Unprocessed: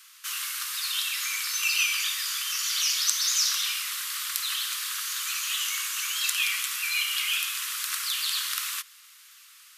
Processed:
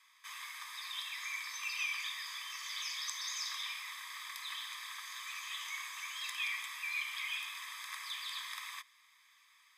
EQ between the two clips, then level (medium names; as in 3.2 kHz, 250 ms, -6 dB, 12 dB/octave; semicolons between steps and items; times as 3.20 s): boxcar filter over 31 samples; +8.0 dB